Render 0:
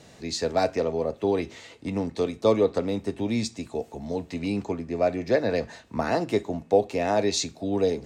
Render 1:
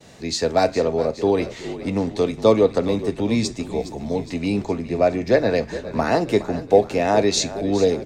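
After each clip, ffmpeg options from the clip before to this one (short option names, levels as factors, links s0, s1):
-filter_complex "[0:a]agate=range=0.0224:threshold=0.00355:ratio=3:detection=peak,asplit=7[s0][s1][s2][s3][s4][s5][s6];[s1]adelay=414,afreqshift=-44,volume=0.2[s7];[s2]adelay=828,afreqshift=-88,volume=0.116[s8];[s3]adelay=1242,afreqshift=-132,volume=0.0668[s9];[s4]adelay=1656,afreqshift=-176,volume=0.0389[s10];[s5]adelay=2070,afreqshift=-220,volume=0.0226[s11];[s6]adelay=2484,afreqshift=-264,volume=0.013[s12];[s0][s7][s8][s9][s10][s11][s12]amix=inputs=7:normalize=0,volume=1.88"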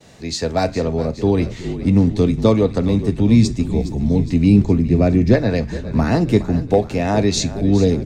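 -af "asubboost=boost=10.5:cutoff=230"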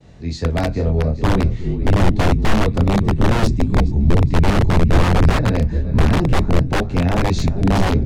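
-af "flanger=delay=22.5:depth=4.1:speed=0.43,aeval=exprs='(mod(4.47*val(0)+1,2)-1)/4.47':c=same,aemphasis=mode=reproduction:type=bsi,volume=0.891"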